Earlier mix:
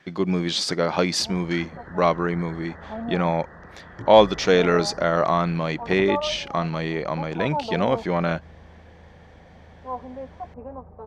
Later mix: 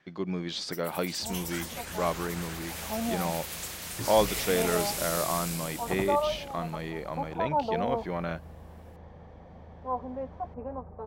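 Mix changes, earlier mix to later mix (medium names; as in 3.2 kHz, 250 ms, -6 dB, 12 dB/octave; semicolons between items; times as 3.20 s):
speech -9.5 dB; first sound: remove brick-wall FIR low-pass 2 kHz; master: add treble shelf 9.9 kHz -7.5 dB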